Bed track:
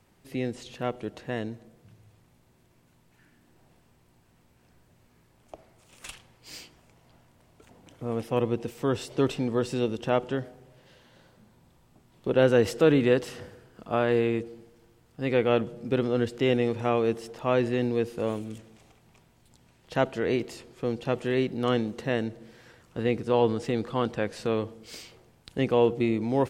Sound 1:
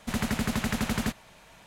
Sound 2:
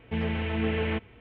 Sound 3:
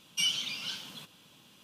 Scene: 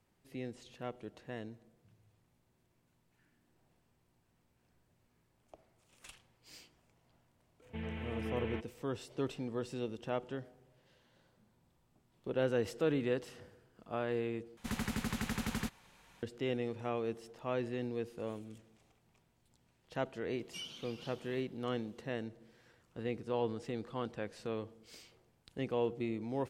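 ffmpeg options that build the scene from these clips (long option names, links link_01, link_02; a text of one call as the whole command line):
ffmpeg -i bed.wav -i cue0.wav -i cue1.wav -i cue2.wav -filter_complex "[0:a]volume=-12dB[link_01];[2:a]aeval=exprs='val(0)+0.00355*sin(2*PI*500*n/s)':channel_layout=same[link_02];[1:a]bandreject=frequency=640:width=5.1[link_03];[3:a]tiltshelf=frequency=1200:gain=6[link_04];[link_01]asplit=2[link_05][link_06];[link_05]atrim=end=14.574[link_07];[link_03]atrim=end=1.66,asetpts=PTS-STARTPTS,volume=-8.5dB[link_08];[link_06]atrim=start=16.226[link_09];[link_02]atrim=end=1.2,asetpts=PTS-STARTPTS,volume=-12.5dB,afade=type=in:duration=0.004:curve=hsin,afade=type=out:start_time=1.196:duration=0.004:curve=hsin,adelay=336042S[link_10];[link_04]atrim=end=1.63,asetpts=PTS-STARTPTS,volume=-12.5dB,afade=type=in:duration=0.004:curve=hsin,afade=type=out:start_time=1.626:duration=0.004:curve=hsin,adelay=897876S[link_11];[link_07][link_08]acrossfade=duration=0.004:curve1=hsin:curve2=hsin[link_12];[link_12][link_09]acrossfade=duration=0.004:curve1=hsin:curve2=hsin[link_13];[link_13][link_10][link_11]amix=inputs=3:normalize=0" out.wav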